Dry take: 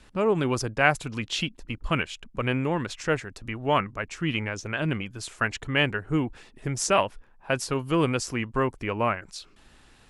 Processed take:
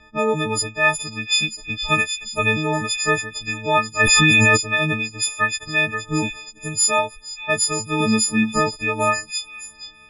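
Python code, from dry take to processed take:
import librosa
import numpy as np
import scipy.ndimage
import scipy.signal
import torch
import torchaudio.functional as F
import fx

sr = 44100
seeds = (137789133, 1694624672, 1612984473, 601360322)

y = fx.freq_snap(x, sr, grid_st=6)
y = fx.rider(y, sr, range_db=4, speed_s=0.5)
y = fx.peak_eq(y, sr, hz=220.0, db=13.5, octaves=0.33, at=(8.0, 8.61))
y = fx.env_lowpass(y, sr, base_hz=2300.0, full_db=-19.5)
y = fx.echo_stepped(y, sr, ms=471, hz=3600.0, octaves=0.7, feedback_pct=70, wet_db=-7)
y = fx.env_flatten(y, sr, amount_pct=100, at=(3.99, 4.56), fade=0.02)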